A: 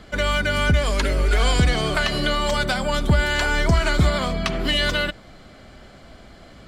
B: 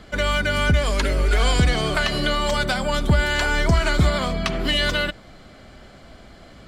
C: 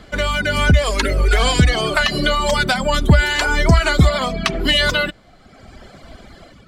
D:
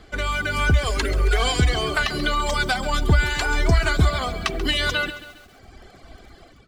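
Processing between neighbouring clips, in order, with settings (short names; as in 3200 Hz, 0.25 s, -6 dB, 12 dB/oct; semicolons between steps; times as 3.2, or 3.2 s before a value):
nothing audible
AGC gain up to 5.5 dB; reverb removal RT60 1.4 s; gain +2.5 dB
comb 2.6 ms, depth 38%; lo-fi delay 0.136 s, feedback 55%, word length 6-bit, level -13.5 dB; gain -6 dB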